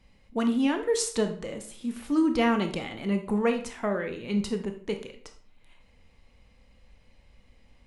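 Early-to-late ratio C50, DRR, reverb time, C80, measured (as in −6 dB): 9.5 dB, 5.5 dB, 0.50 s, 14.5 dB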